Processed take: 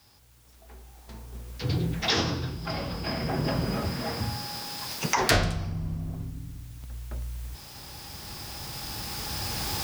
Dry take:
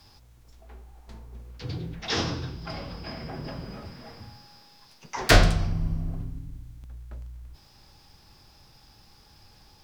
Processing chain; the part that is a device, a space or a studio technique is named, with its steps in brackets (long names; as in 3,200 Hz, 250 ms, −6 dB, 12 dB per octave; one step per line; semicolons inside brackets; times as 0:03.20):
high-pass filter 54 Hz
cheap recorder with automatic gain (white noise bed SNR 28 dB; camcorder AGC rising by 6.7 dB per second)
level −5 dB